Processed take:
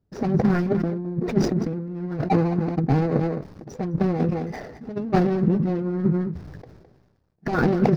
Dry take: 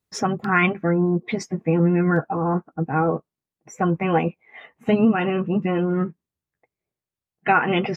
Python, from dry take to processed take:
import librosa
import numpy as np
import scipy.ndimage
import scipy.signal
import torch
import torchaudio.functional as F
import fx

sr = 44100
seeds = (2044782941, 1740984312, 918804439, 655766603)

p1 = scipy.signal.medfilt(x, 41)
p2 = fx.over_compress(p1, sr, threshold_db=-27.0, ratio=-0.5)
p3 = fx.curve_eq(p2, sr, hz=(120.0, 1700.0, 3000.0, 5200.0, 7600.0), db=(0, -6, -13, -5, -18))
p4 = p3 + fx.echo_single(p3, sr, ms=212, db=-18.0, dry=0)
p5 = fx.sustainer(p4, sr, db_per_s=44.0)
y = p5 * librosa.db_to_amplitude(7.0)